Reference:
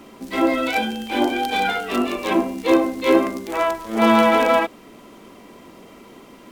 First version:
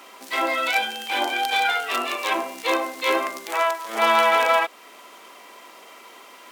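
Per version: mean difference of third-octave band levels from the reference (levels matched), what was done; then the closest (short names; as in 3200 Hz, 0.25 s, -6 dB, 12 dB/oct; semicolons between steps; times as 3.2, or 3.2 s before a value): 8.0 dB: HPF 820 Hz 12 dB/oct; in parallel at -2.5 dB: compressor, threshold -30 dBFS, peak gain reduction 14 dB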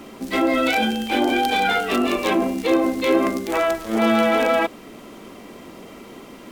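3.5 dB: notch 990 Hz, Q 22; in parallel at 0 dB: negative-ratio compressor -23 dBFS, ratio -1; on the sum: gain -4 dB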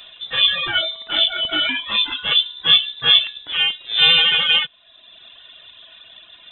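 15.5 dB: reverb removal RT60 0.92 s; inverted band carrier 3800 Hz; gain +2.5 dB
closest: second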